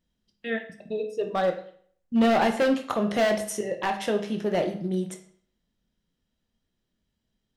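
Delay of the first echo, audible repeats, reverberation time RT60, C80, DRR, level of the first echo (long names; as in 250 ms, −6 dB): no echo audible, no echo audible, 0.55 s, 14.0 dB, 5.0 dB, no echo audible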